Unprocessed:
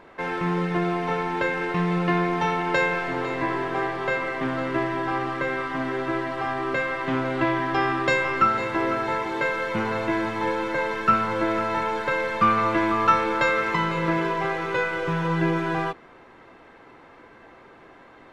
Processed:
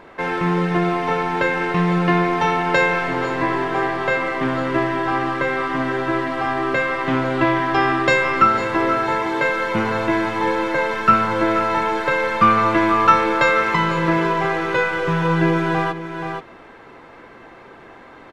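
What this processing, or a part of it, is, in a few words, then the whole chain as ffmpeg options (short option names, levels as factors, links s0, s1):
ducked delay: -filter_complex "[0:a]asplit=3[s0][s1][s2];[s1]adelay=478,volume=0.501[s3];[s2]apad=whole_len=829150[s4];[s3][s4]sidechaincompress=threshold=0.0251:ratio=3:attack=6.1:release=479[s5];[s0][s5]amix=inputs=2:normalize=0,volume=1.88"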